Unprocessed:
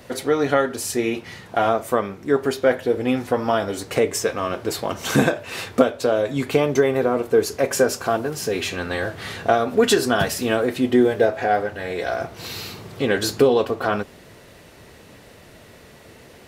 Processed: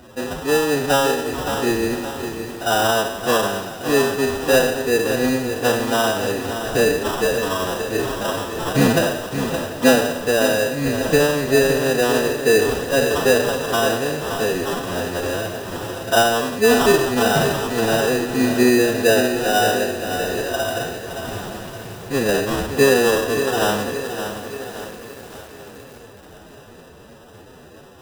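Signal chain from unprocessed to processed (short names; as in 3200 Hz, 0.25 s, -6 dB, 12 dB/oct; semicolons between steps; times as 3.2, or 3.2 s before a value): spectral trails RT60 0.51 s; sample-rate reducer 2200 Hz, jitter 0%; time stretch by phase-locked vocoder 1.7×; on a send: swung echo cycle 0.989 s, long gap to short 3:1, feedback 53%, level -18.5 dB; on the sum: lo-fi delay 0.568 s, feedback 55%, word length 6-bit, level -8.5 dB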